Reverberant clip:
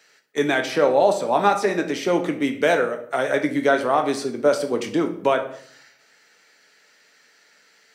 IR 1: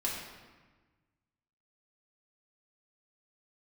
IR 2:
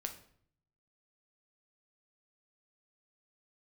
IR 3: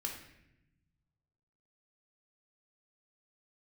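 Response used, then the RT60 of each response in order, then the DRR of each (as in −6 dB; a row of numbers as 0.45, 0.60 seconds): 2; 1.3, 0.60, 0.85 seconds; −5.0, 4.5, 0.5 decibels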